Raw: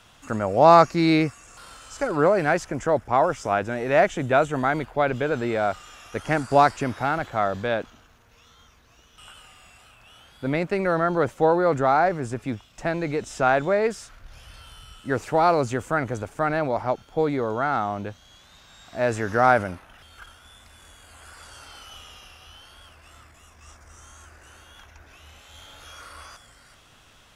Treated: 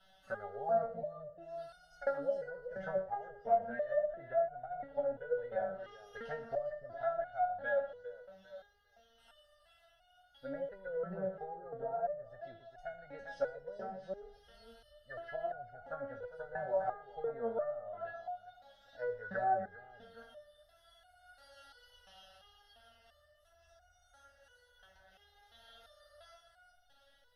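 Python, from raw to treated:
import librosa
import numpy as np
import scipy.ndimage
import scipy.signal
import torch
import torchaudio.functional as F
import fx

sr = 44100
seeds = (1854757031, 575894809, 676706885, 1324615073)

y = fx.env_lowpass_down(x, sr, base_hz=380.0, full_db=-18.0)
y = fx.peak_eq(y, sr, hz=610.0, db=6.5, octaves=0.68)
y = fx.fixed_phaser(y, sr, hz=1600.0, stages=8)
y = fx.echo_multitap(y, sr, ms=(76, 120), db=(-17.5, -16.0))
y = fx.dynamic_eq(y, sr, hz=1600.0, q=1.2, threshold_db=-43.0, ratio=4.0, max_db=7)
y = fx.echo_feedback(y, sr, ms=402, feedback_pct=27, wet_db=-10)
y = fx.resonator_held(y, sr, hz=2.9, low_hz=190.0, high_hz=720.0)
y = F.gain(torch.from_numpy(y), 1.0).numpy()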